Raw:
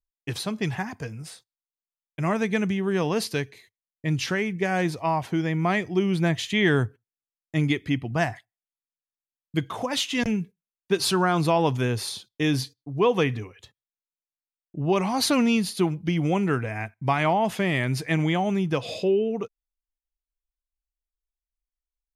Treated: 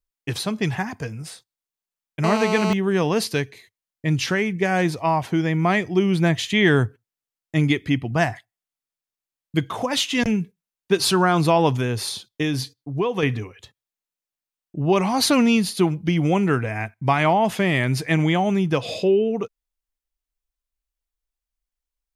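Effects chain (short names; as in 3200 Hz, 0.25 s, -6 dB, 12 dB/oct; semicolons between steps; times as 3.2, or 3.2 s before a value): 2.24–2.73 GSM buzz -28 dBFS; 11.76–13.23 compressor 10:1, threshold -23 dBFS, peak gain reduction 8 dB; gain +4 dB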